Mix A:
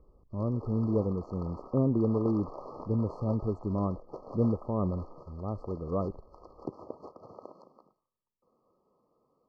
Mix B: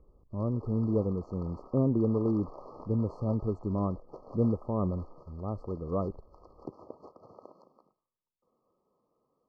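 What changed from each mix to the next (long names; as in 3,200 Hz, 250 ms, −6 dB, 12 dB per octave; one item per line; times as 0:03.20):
background −4.0 dB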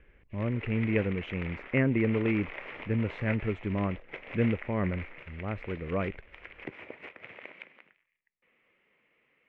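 background: add high shelf with overshoot 7,500 Hz +9 dB, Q 1.5
master: remove linear-phase brick-wall band-stop 1,300–4,200 Hz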